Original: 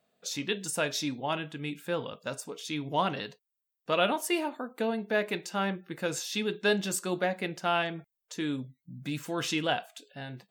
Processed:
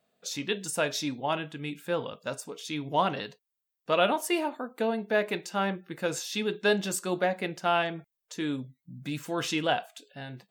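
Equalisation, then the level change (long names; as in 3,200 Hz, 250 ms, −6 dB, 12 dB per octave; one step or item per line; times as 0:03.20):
dynamic equaliser 710 Hz, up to +3 dB, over −36 dBFS, Q 0.7
0.0 dB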